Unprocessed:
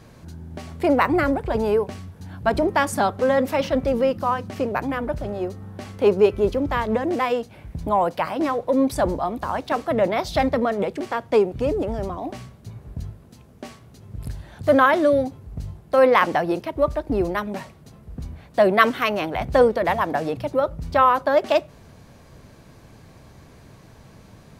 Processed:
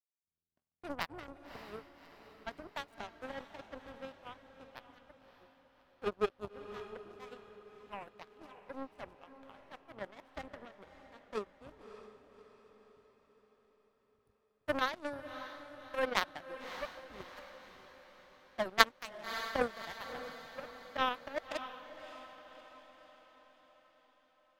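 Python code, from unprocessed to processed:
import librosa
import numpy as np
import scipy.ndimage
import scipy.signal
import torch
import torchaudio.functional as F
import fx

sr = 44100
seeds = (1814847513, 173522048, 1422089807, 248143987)

y = fx.power_curve(x, sr, exponent=3.0)
y = fx.echo_diffused(y, sr, ms=595, feedback_pct=52, wet_db=-11.0)
y = F.gain(torch.from_numpy(y), -1.5).numpy()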